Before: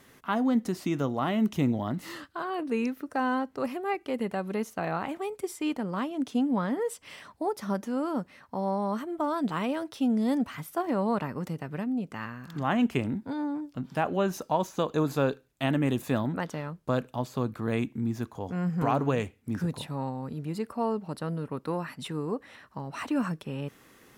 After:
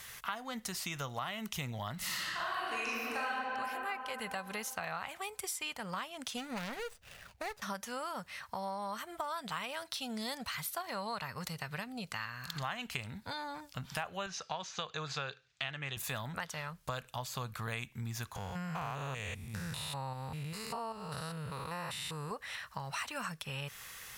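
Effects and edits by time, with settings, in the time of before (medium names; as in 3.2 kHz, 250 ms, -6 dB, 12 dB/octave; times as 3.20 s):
1.97–3.28 s: reverb throw, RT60 2.7 s, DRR -9.5 dB
6.37–7.62 s: median filter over 41 samples
9.82–13.61 s: peaking EQ 4.2 kHz +8.5 dB 0.23 oct
14.26–15.97 s: cabinet simulation 120–5600 Hz, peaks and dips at 240 Hz -10 dB, 580 Hz -5 dB, 950 Hz -6 dB
18.36–22.31 s: spectrogram pixelated in time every 200 ms
whole clip: amplifier tone stack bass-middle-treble 10-0-10; compression 4:1, threshold -51 dBFS; trim +13.5 dB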